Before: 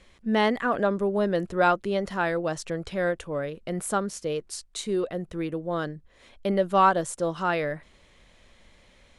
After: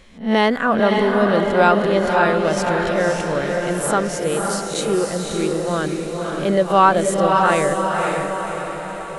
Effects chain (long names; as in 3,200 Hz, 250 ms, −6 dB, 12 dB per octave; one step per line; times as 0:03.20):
peak hold with a rise ahead of every peak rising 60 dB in 0.31 s
feedback delay with all-pass diffusion 546 ms, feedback 54%, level −3 dB
level +6 dB